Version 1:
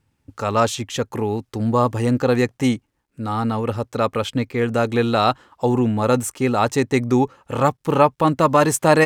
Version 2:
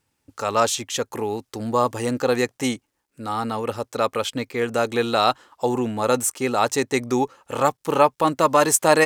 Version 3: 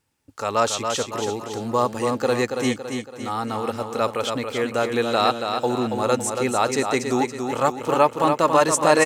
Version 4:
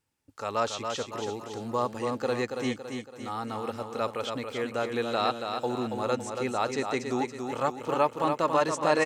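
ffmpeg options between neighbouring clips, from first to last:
ffmpeg -i in.wav -af "bass=frequency=250:gain=-10,treble=frequency=4000:gain=6,volume=-1dB" out.wav
ffmpeg -i in.wav -filter_complex "[0:a]acrossover=split=9200[link_01][link_02];[link_02]acompressor=threshold=-46dB:ratio=4:attack=1:release=60[link_03];[link_01][link_03]amix=inputs=2:normalize=0,aecho=1:1:280|560|840|1120|1400|1680:0.501|0.236|0.111|0.052|0.0245|0.0115,volume=-1dB" out.wav
ffmpeg -i in.wav -filter_complex "[0:a]acrossover=split=6400[link_01][link_02];[link_02]acompressor=threshold=-48dB:ratio=4:attack=1:release=60[link_03];[link_01][link_03]amix=inputs=2:normalize=0,volume=-7.5dB" out.wav

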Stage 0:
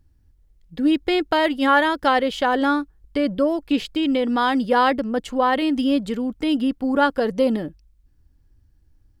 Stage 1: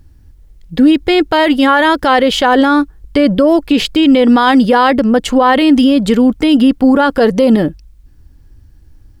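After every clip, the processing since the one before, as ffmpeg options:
ffmpeg -i in.wav -af "alimiter=level_in=16.5dB:limit=-1dB:release=50:level=0:latency=1,volume=-1dB" out.wav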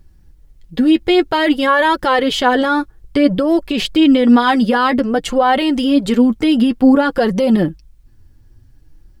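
ffmpeg -i in.wav -af "flanger=delay=5.2:depth=3.9:regen=24:speed=0.54:shape=sinusoidal" out.wav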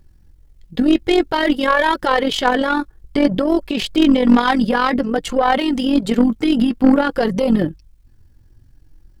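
ffmpeg -i in.wav -af "tremolo=f=44:d=0.571,aeval=exprs='0.794*(cos(1*acos(clip(val(0)/0.794,-1,1)))-cos(1*PI/2))+0.0708*(cos(6*acos(clip(val(0)/0.794,-1,1)))-cos(6*PI/2))+0.0316*(cos(8*acos(clip(val(0)/0.794,-1,1)))-cos(8*PI/2))':channel_layout=same" out.wav

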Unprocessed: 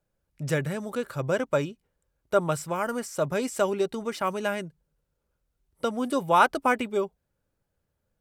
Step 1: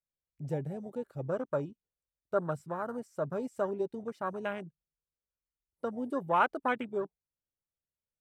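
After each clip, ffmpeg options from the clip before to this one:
ffmpeg -i in.wav -af "afwtdn=0.0316,volume=-7dB" out.wav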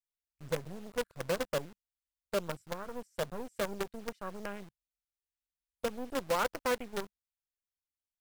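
ffmpeg -i in.wav -filter_complex "[0:a]equalizer=frequency=200:width_type=o:width=0.33:gain=7,equalizer=frequency=500:width_type=o:width=0.33:gain=10,equalizer=frequency=800:width_type=o:width=0.33:gain=-4,acrossover=split=110|1200[link_01][link_02][link_03];[link_02]acrusher=bits=5:dc=4:mix=0:aa=0.000001[link_04];[link_01][link_04][link_03]amix=inputs=3:normalize=0,volume=-6dB" out.wav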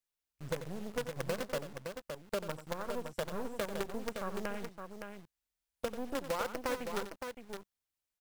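ffmpeg -i in.wav -af "acompressor=threshold=-35dB:ratio=6,aecho=1:1:90|565:0.266|0.473,volume=3dB" out.wav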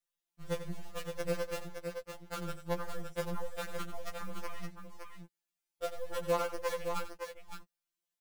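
ffmpeg -i in.wav -af "afftfilt=real='re*2.83*eq(mod(b,8),0)':imag='im*2.83*eq(mod(b,8),0)':win_size=2048:overlap=0.75,volume=1.5dB" out.wav

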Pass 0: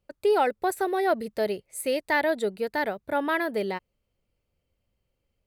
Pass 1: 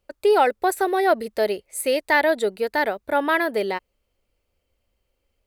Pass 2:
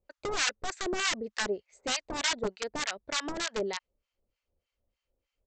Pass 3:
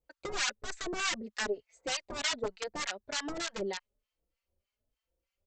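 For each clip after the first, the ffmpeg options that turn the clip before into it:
ffmpeg -i in.wav -af "equalizer=frequency=140:width_type=o:width=1.2:gain=-12,volume=6dB" out.wav
ffmpeg -i in.wav -filter_complex "[0:a]aresample=16000,aeval=exprs='(mod(5.96*val(0)+1,2)-1)/5.96':channel_layout=same,aresample=44100,acrossover=split=920[link_01][link_02];[link_01]aeval=exprs='val(0)*(1-1/2+1/2*cos(2*PI*3.3*n/s))':channel_layout=same[link_03];[link_02]aeval=exprs='val(0)*(1-1/2-1/2*cos(2*PI*3.3*n/s))':channel_layout=same[link_04];[link_03][link_04]amix=inputs=2:normalize=0,volume=-5dB" out.wav
ffmpeg -i in.wav -filter_complex "[0:a]asplit=2[link_01][link_02];[link_02]adelay=4.1,afreqshift=1.2[link_03];[link_01][link_03]amix=inputs=2:normalize=1" out.wav

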